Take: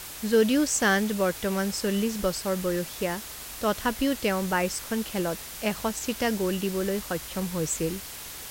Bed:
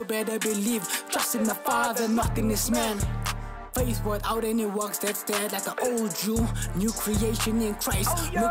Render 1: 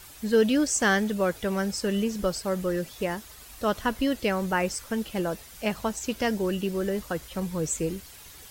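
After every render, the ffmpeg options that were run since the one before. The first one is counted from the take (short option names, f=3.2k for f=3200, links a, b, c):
-af "afftdn=nr=10:nf=-40"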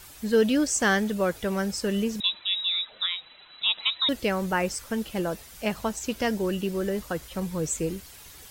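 -filter_complex "[0:a]asettb=1/sr,asplit=3[a][b][c];[a]atrim=end=2.204[d];[b]atrim=start=2.2:end=4.09,asetpts=PTS-STARTPTS,afade=t=in:d=0.004:c=qsin,afade=t=out:st=1.886:d=0.004:c=qsin,lowpass=f=3.4k:t=q:w=0.5098,lowpass=f=3.4k:t=q:w=0.6013,lowpass=f=3.4k:t=q:w=0.9,lowpass=f=3.4k:t=q:w=2.563,afreqshift=-4000[e];[c]atrim=start=4.086[f];[d][e]acrossfade=d=0.004:c1=hsin:c2=qsin[g];[g][f]acrossfade=d=0.004:c1=qsin:c2=hsin"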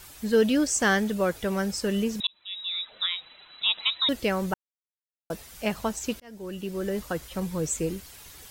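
-filter_complex "[0:a]asplit=5[a][b][c][d][e];[a]atrim=end=2.27,asetpts=PTS-STARTPTS,afade=t=out:st=2.266:d=0.004:c=hsin[f];[b]atrim=start=2.27:end=4.54,asetpts=PTS-STARTPTS,afade=t=in:d=0.77,afade=t=out:st=2.266:d=0.004:c=hsin[g];[c]atrim=start=4.54:end=5.3,asetpts=PTS-STARTPTS,volume=0[h];[d]atrim=start=5.3:end=6.2,asetpts=PTS-STARTPTS,afade=t=in:d=0.004:c=hsin,afade=t=out:st=0.896:d=0.004:c=hsin[i];[e]atrim=start=6.2,asetpts=PTS-STARTPTS,afade=t=in:d=0.81[j];[f][g][h][i][j]concat=n=5:v=0:a=1"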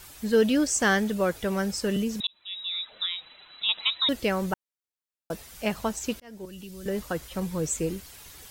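-filter_complex "[0:a]asettb=1/sr,asplit=3[a][b][c];[a]atrim=end=1.964[d];[b]atrim=start=1.96:end=3.69,asetpts=PTS-STARTPTS,afade=t=in:d=0.004:c=qsin,afade=t=out:st=1.726:d=0.004:c=qsin,acrossover=split=360|3000[e][f][g];[f]acompressor=threshold=-37dB:ratio=6:attack=3.2:release=140:knee=2.83:detection=peak[h];[e][h][g]amix=inputs=3:normalize=0[i];[c]atrim=start=3.686[j];[d][i]acrossfade=d=0.004:c1=hsin:c2=qsin[k];[k][j]acrossfade=d=0.004:c1=qsin:c2=hsin,asettb=1/sr,asplit=3[l][m][n];[l]atrim=end=6.454[o];[m]atrim=start=6.45:end=6.86,asetpts=PTS-STARTPTS,afade=t=in:d=0.004:c=qsin,afade=t=out:st=0.406:d=0.004:c=qsin,acrossover=split=150|3000[p][q][r];[q]acompressor=threshold=-45dB:ratio=6:attack=3.2:release=140:knee=2.83:detection=peak[s];[p][s][r]amix=inputs=3:normalize=0[t];[n]atrim=start=6.856[u];[o][t]acrossfade=d=0.004:c1=hsin:c2=qsin[v];[v][u]acrossfade=d=0.004:c1=qsin:c2=hsin"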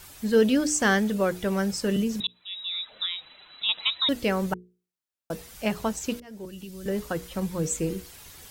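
-af "equalizer=f=160:w=0.47:g=2.5,bandreject=f=60:t=h:w=6,bandreject=f=120:t=h:w=6,bandreject=f=180:t=h:w=6,bandreject=f=240:t=h:w=6,bandreject=f=300:t=h:w=6,bandreject=f=360:t=h:w=6,bandreject=f=420:t=h:w=6,bandreject=f=480:t=h:w=6"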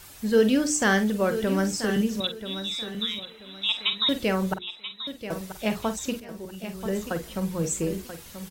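-filter_complex "[0:a]asplit=2[a][b];[b]adelay=47,volume=-10.5dB[c];[a][c]amix=inputs=2:normalize=0,asplit=2[d][e];[e]aecho=0:1:984|1968|2952:0.282|0.0733|0.0191[f];[d][f]amix=inputs=2:normalize=0"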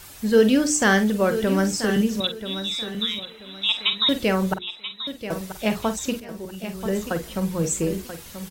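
-af "volume=3.5dB"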